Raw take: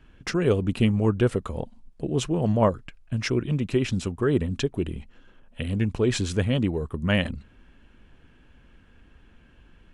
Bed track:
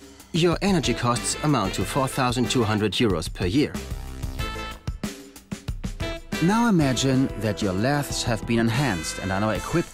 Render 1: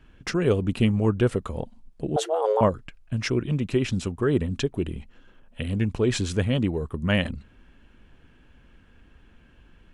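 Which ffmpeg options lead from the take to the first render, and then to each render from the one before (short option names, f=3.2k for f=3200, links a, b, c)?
-filter_complex "[0:a]asettb=1/sr,asplit=3[a][b][c];[a]atrim=end=2.164[d];[b]atrim=start=2.16:end=2.61,asetpts=PTS-STARTPTS,afade=t=in:d=0.004:c=qsin,afade=t=out:st=0.446:d=0.004:c=qsin,afreqshift=320[e];[c]atrim=start=2.606[f];[d][e]acrossfade=d=0.004:c1=hsin:c2=qsin[g];[g][f]acrossfade=d=0.004:c1=qsin:c2=hsin"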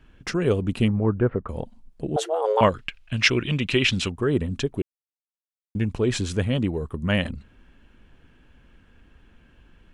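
-filter_complex "[0:a]asettb=1/sr,asplit=3[a][b][c];[a]atrim=end=0.884[d];[b]atrim=start=0.88:end=1.49,asetpts=PTS-STARTPTS,afade=t=in:d=0.004:c=qsin,afade=t=out:st=0.606:d=0.004:c=qsin,lowpass=f=1.8k:w=0.5412,lowpass=f=1.8k:w=1.3066[e];[c]atrim=start=1.486[f];[d][e]acrossfade=d=0.004:c1=hsin:c2=qsin[g];[g][f]acrossfade=d=0.004:c1=qsin:c2=hsin,asettb=1/sr,asplit=3[h][i][j];[h]atrim=end=2.574[k];[i]atrim=start=2.57:end=4.1,asetpts=PTS-STARTPTS,afade=t=in:d=0.004:c=qsin,afade=t=out:st=1.526:d=0.004:c=qsin,equalizer=f=2.9k:t=o:w=2:g=15[l];[j]atrim=start=4.096[m];[k][l]acrossfade=d=0.004:c1=hsin:c2=qsin[n];[n][m]acrossfade=d=0.004:c1=qsin:c2=hsin,asplit=3[o][p][q];[o]atrim=end=4.82,asetpts=PTS-STARTPTS,afade=t=out:st=4.816:d=0.004:c=hsin[r];[p]atrim=start=4.82:end=5.75,asetpts=PTS-STARTPTS,volume=0[s];[q]atrim=start=5.75,asetpts=PTS-STARTPTS,afade=t=in:d=0.004:c=hsin[t];[r][s][t]concat=n=3:v=0:a=1"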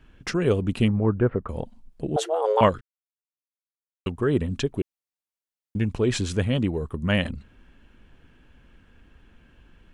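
-filter_complex "[0:a]asplit=3[a][b][c];[a]atrim=end=2.81,asetpts=PTS-STARTPTS,afade=t=out:st=2.806:d=0.004:c=hsin[d];[b]atrim=start=2.81:end=4.06,asetpts=PTS-STARTPTS,volume=0[e];[c]atrim=start=4.06,asetpts=PTS-STARTPTS,afade=t=in:d=0.004:c=hsin[f];[d][e][f]concat=n=3:v=0:a=1"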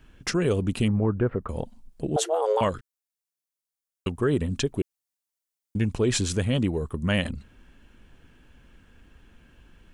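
-filter_complex "[0:a]acrossover=split=5200[a][b];[a]alimiter=limit=-14dB:level=0:latency=1:release=72[c];[b]acontrast=78[d];[c][d]amix=inputs=2:normalize=0"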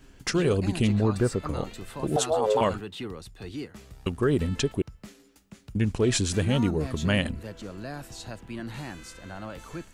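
-filter_complex "[1:a]volume=-15dB[a];[0:a][a]amix=inputs=2:normalize=0"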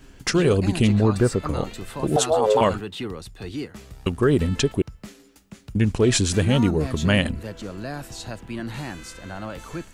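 -af "volume=5dB"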